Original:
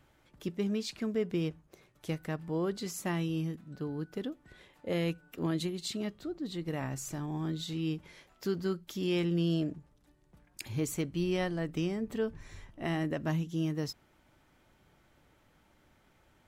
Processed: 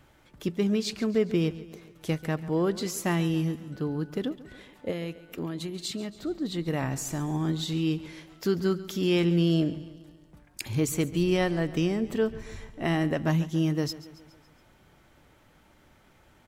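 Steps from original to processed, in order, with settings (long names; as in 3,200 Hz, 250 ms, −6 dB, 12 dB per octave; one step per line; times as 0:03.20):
0:04.90–0:06.23: downward compressor 6 to 1, threshold −37 dBFS, peak gain reduction 10 dB
on a send: repeating echo 139 ms, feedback 55%, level −17 dB
on the sum: level +6.5 dB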